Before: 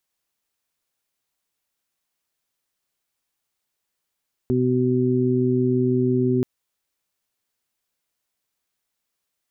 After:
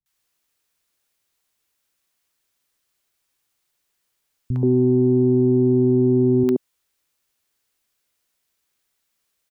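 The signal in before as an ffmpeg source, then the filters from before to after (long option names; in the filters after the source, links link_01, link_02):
-f lavfi -i "aevalsrc='0.0708*sin(2*PI*126*t)+0.0944*sin(2*PI*252*t)+0.0841*sin(2*PI*378*t)':duration=1.93:sample_rate=44100"
-filter_complex "[0:a]acontrast=47,acrossover=split=190|750[link_01][link_02][link_03];[link_03]adelay=60[link_04];[link_02]adelay=130[link_05];[link_01][link_05][link_04]amix=inputs=3:normalize=0"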